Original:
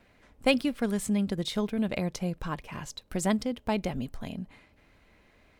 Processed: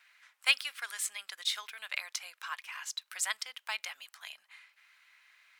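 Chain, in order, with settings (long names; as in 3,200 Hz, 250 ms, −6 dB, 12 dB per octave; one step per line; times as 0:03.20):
high-pass filter 1,300 Hz 24 dB per octave
level +3.5 dB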